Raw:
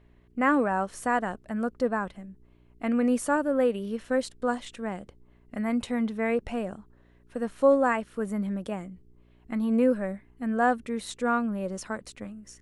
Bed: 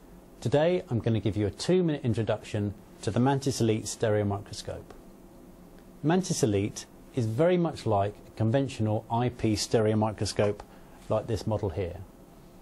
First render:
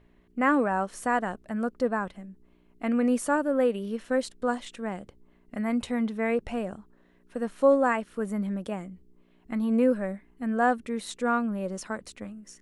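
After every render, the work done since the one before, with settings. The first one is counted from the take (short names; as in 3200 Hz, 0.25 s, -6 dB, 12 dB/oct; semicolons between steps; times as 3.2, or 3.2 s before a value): de-hum 60 Hz, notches 2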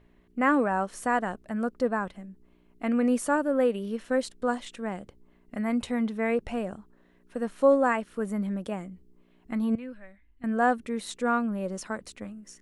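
9.75–10.44 EQ curve 100 Hz 0 dB, 170 Hz -24 dB, 270 Hz -14 dB, 430 Hz -24 dB, 630 Hz -18 dB, 1200 Hz -16 dB, 2000 Hz -8 dB, 3700 Hz -7 dB, 5500 Hz -16 dB, 10000 Hz -22 dB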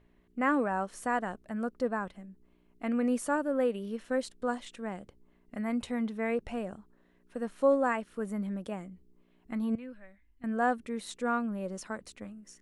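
gain -4.5 dB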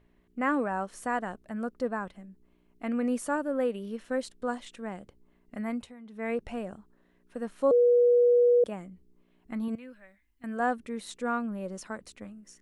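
5.69–6.3 dip -16.5 dB, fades 0.25 s; 7.71–8.64 bleep 484 Hz -17.5 dBFS; 9.68–10.6 tilt +1.5 dB/oct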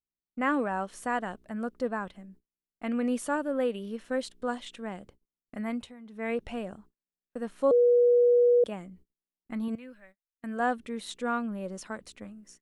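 dynamic EQ 3300 Hz, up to +6 dB, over -57 dBFS, Q 2; gate -54 dBFS, range -38 dB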